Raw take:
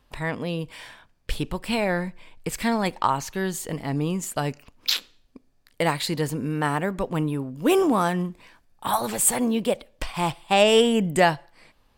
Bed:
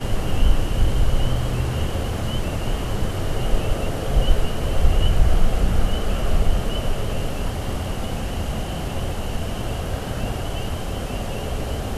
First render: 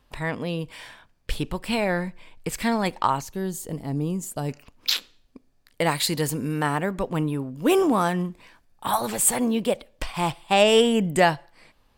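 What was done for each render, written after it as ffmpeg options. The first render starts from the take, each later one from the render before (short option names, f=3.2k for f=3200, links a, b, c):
-filter_complex "[0:a]asettb=1/sr,asplit=3[a][b][c];[a]atrim=end=3.214[d];[b]atrim=start=3.21:end=4.49,asetpts=PTS-STARTPTS,afade=t=in:d=0.004:c=qsin,afade=t=out:st=1.276:d=0.004:c=qsin,equalizer=f=2k:t=o:w=2.6:g=-11.5[e];[c]atrim=start=4.486[f];[d][e]acrossfade=d=0.004:c1=hsin:c2=qsin[g];[g][f]acrossfade=d=0.004:c1=qsin:c2=hsin,asettb=1/sr,asplit=3[h][i][j];[h]atrim=end=5.914[k];[i]atrim=start=5.91:end=6.63,asetpts=PTS-STARTPTS,afade=t=in:d=0.004:c=qsin,afade=t=out:st=0.716:d=0.004:c=qsin,highshelf=f=4.9k:g=9[l];[j]atrim=start=6.626[m];[k][l]acrossfade=d=0.004:c1=hsin:c2=qsin[n];[n][m]acrossfade=d=0.004:c1=qsin:c2=hsin"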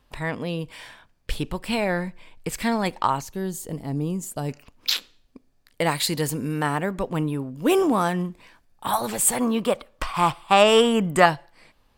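-filter_complex "[0:a]asettb=1/sr,asplit=3[a][b][c];[a]atrim=end=9.404[d];[b]atrim=start=9.4:end=11.26,asetpts=PTS-STARTPTS,afade=t=in:d=0.004:c=qsin,afade=t=out:st=1.856:d=0.004:c=qsin,equalizer=f=1.2k:t=o:w=0.61:g=14[e];[c]atrim=start=11.256[f];[d][e]acrossfade=d=0.004:c1=hsin:c2=qsin[g];[g][f]acrossfade=d=0.004:c1=qsin:c2=hsin"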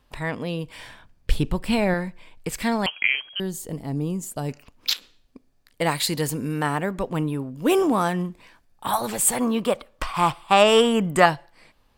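-filter_complex "[0:a]asettb=1/sr,asplit=3[a][b][c];[a]atrim=end=0.754[d];[b]atrim=start=0.75:end=1.94,asetpts=PTS-STARTPTS,afade=t=in:d=0.004:c=qsin,afade=t=out:st=1.186:d=0.004:c=qsin,lowshelf=f=260:g=8.5[e];[c]atrim=start=1.936[f];[d][e]acrossfade=d=0.004:c1=hsin:c2=qsin[g];[g][f]acrossfade=d=0.004:c1=qsin:c2=hsin,asettb=1/sr,asplit=3[h][i][j];[h]atrim=end=2.864[k];[i]atrim=start=2.86:end=3.4,asetpts=PTS-STARTPTS,afade=t=in:d=0.004:c=qsin,afade=t=out:st=0.536:d=0.004:c=qsin,lowpass=f=2.8k:t=q:w=0.5098,lowpass=f=2.8k:t=q:w=0.6013,lowpass=f=2.8k:t=q:w=0.9,lowpass=f=2.8k:t=q:w=2.563,afreqshift=-3300[l];[j]atrim=start=3.396[m];[k][l]acrossfade=d=0.004:c1=hsin:c2=qsin[n];[n][m]acrossfade=d=0.004:c1=qsin:c2=hsin,asettb=1/sr,asplit=3[o][p][q];[o]atrim=end=4.934[r];[p]atrim=start=4.93:end=5.81,asetpts=PTS-STARTPTS,afade=t=in:d=0.004:c=qsin,afade=t=out:st=0.876:d=0.004:c=qsin,acompressor=threshold=-33dB:ratio=5:attack=3.2:release=140:knee=1:detection=peak[s];[q]atrim=start=5.806[t];[r][s]acrossfade=d=0.004:c1=hsin:c2=qsin[u];[u][t]acrossfade=d=0.004:c1=qsin:c2=hsin"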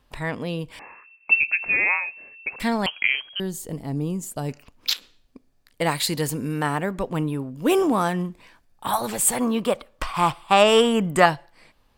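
-filter_complex "[0:a]asettb=1/sr,asplit=3[a][b][c];[a]atrim=end=0.794[d];[b]atrim=start=0.79:end=2.6,asetpts=PTS-STARTPTS,afade=t=in:d=0.004:c=qsin,afade=t=out:st=1.806:d=0.004:c=qsin,lowpass=f=2.3k:t=q:w=0.5098,lowpass=f=2.3k:t=q:w=0.6013,lowpass=f=2.3k:t=q:w=0.9,lowpass=f=2.3k:t=q:w=2.563,afreqshift=-2700[e];[c]atrim=start=2.596[f];[d][e]acrossfade=d=0.004:c1=hsin:c2=qsin[g];[g][f]acrossfade=d=0.004:c1=qsin:c2=hsin"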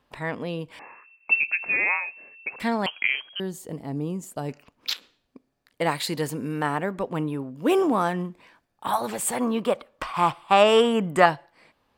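-af "highpass=f=200:p=1,highshelf=f=3.6k:g=-8.5"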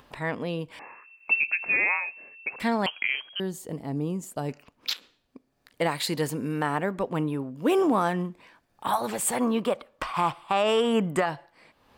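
-af "alimiter=limit=-14dB:level=0:latency=1:release=131,acompressor=mode=upward:threshold=-46dB:ratio=2.5"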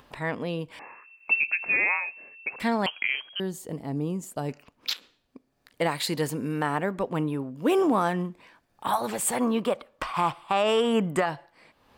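-af anull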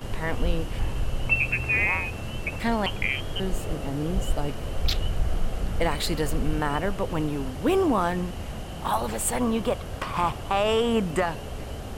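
-filter_complex "[1:a]volume=-9dB[a];[0:a][a]amix=inputs=2:normalize=0"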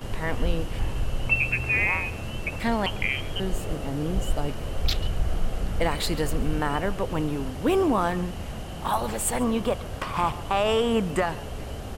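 -filter_complex "[0:a]asplit=2[a][b];[b]adelay=139.9,volume=-19dB,highshelf=f=4k:g=-3.15[c];[a][c]amix=inputs=2:normalize=0"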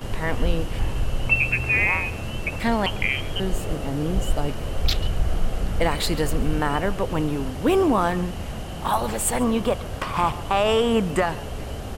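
-af "volume=3dB"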